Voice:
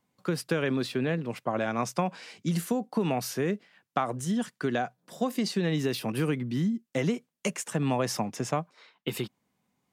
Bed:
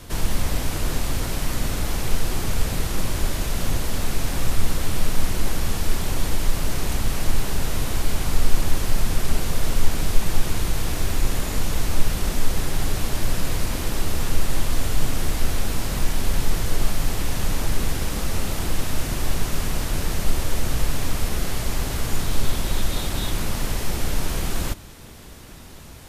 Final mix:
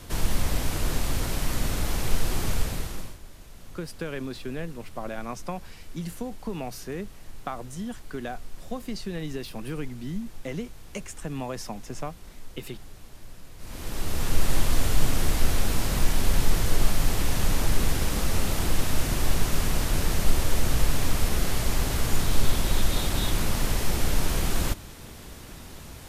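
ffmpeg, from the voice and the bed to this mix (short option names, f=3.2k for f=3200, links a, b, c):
-filter_complex "[0:a]adelay=3500,volume=-6dB[a];[1:a]volume=19.5dB,afade=t=out:st=2.49:d=0.69:silence=0.1,afade=t=in:st=13.57:d=0.92:silence=0.0794328[b];[a][b]amix=inputs=2:normalize=0"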